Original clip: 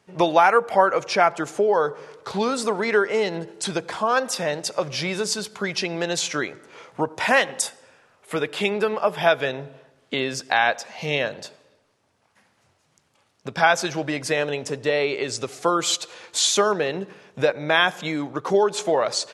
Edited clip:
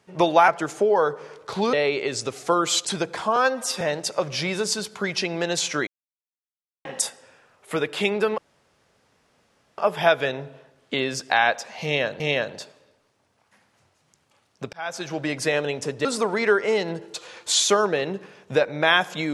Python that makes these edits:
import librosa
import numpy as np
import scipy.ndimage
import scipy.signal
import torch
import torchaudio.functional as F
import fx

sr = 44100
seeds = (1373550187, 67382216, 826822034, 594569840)

y = fx.edit(x, sr, fx.cut(start_s=0.48, length_s=0.78),
    fx.swap(start_s=2.51, length_s=1.09, other_s=14.89, other_length_s=1.12),
    fx.stretch_span(start_s=4.11, length_s=0.3, factor=1.5),
    fx.silence(start_s=6.47, length_s=0.98),
    fx.insert_room_tone(at_s=8.98, length_s=1.4),
    fx.repeat(start_s=11.04, length_s=0.36, count=2),
    fx.fade_in_span(start_s=13.57, length_s=0.57), tone=tone)